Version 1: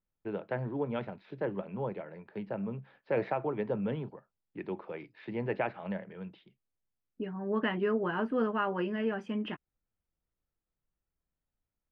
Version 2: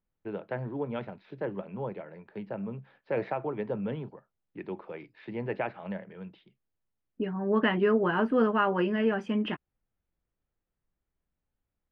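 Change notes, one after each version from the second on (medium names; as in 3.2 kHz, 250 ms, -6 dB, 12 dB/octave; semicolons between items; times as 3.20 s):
second voice +5.5 dB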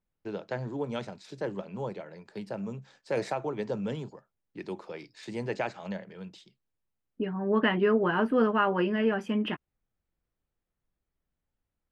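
first voice: remove low-pass 2.9 kHz 24 dB/octave; master: remove distance through air 86 m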